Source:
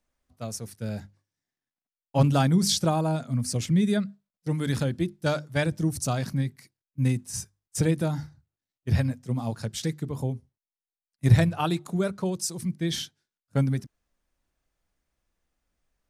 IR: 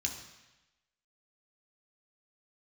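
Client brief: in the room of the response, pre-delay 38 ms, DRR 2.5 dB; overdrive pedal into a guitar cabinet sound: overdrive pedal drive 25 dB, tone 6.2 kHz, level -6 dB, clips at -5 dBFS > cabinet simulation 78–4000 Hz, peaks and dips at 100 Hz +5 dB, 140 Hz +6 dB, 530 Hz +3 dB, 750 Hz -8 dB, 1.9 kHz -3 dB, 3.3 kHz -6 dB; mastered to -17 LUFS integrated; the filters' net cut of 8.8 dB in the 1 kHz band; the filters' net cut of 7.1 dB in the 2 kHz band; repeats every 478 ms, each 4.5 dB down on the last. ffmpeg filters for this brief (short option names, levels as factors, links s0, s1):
-filter_complex "[0:a]equalizer=f=1000:t=o:g=-5.5,equalizer=f=2000:t=o:g=-5,aecho=1:1:478|956|1434|1912|2390|2868|3346|3824|4302:0.596|0.357|0.214|0.129|0.0772|0.0463|0.0278|0.0167|0.01,asplit=2[s0][s1];[1:a]atrim=start_sample=2205,adelay=38[s2];[s1][s2]afir=irnorm=-1:irlink=0,volume=0.596[s3];[s0][s3]amix=inputs=2:normalize=0,asplit=2[s4][s5];[s5]highpass=f=720:p=1,volume=17.8,asoftclip=type=tanh:threshold=0.562[s6];[s4][s6]amix=inputs=2:normalize=0,lowpass=f=6200:p=1,volume=0.501,highpass=78,equalizer=f=100:t=q:w=4:g=5,equalizer=f=140:t=q:w=4:g=6,equalizer=f=530:t=q:w=4:g=3,equalizer=f=750:t=q:w=4:g=-8,equalizer=f=1900:t=q:w=4:g=-3,equalizer=f=3300:t=q:w=4:g=-6,lowpass=f=4000:w=0.5412,lowpass=f=4000:w=1.3066"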